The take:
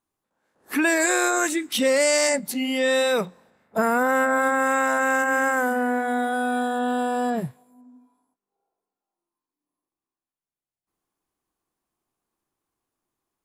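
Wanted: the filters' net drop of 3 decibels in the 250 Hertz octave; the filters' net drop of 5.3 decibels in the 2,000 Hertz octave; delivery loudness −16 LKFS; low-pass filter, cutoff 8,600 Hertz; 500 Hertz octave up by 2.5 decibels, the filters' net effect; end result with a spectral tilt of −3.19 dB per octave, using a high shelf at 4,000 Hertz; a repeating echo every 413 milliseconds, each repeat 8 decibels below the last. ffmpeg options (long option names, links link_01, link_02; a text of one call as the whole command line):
ffmpeg -i in.wav -af "lowpass=8600,equalizer=frequency=250:width_type=o:gain=-4.5,equalizer=frequency=500:width_type=o:gain=4,equalizer=frequency=2000:width_type=o:gain=-6.5,highshelf=frequency=4000:gain=-5.5,aecho=1:1:413|826|1239|1652|2065:0.398|0.159|0.0637|0.0255|0.0102,volume=6.5dB" out.wav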